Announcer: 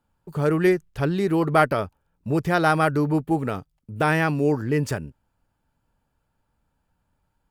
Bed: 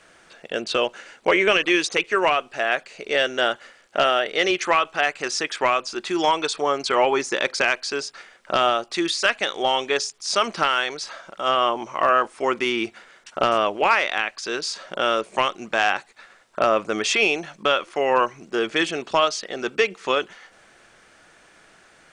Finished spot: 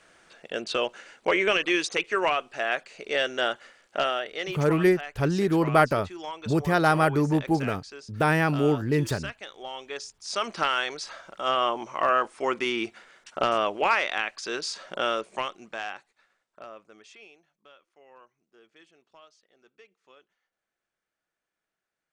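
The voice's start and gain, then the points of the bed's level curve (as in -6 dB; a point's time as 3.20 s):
4.20 s, -1.5 dB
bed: 3.91 s -5 dB
4.81 s -17 dB
9.70 s -17 dB
10.65 s -4.5 dB
15.01 s -4.5 dB
17.49 s -34.5 dB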